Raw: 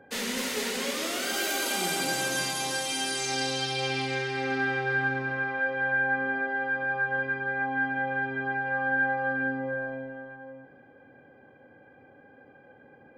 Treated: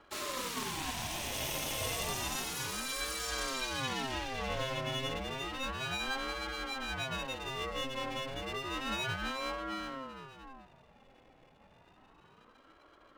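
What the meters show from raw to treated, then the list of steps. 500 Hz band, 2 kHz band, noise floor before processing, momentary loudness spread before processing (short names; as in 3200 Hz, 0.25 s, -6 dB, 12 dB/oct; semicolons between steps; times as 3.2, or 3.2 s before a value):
-8.0 dB, -13.0 dB, -55 dBFS, 5 LU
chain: minimum comb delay 0.33 ms; ring modulator with a swept carrier 550 Hz, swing 55%, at 0.31 Hz; gain -2.5 dB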